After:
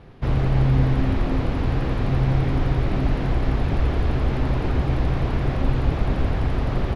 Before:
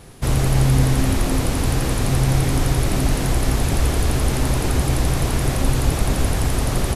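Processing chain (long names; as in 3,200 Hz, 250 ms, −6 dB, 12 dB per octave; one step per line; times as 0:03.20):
high-frequency loss of the air 320 metres
level −2 dB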